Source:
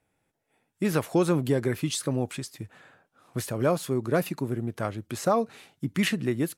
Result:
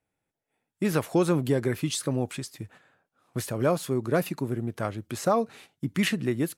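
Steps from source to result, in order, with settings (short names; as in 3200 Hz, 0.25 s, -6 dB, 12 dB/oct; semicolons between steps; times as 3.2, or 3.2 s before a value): gate -49 dBFS, range -8 dB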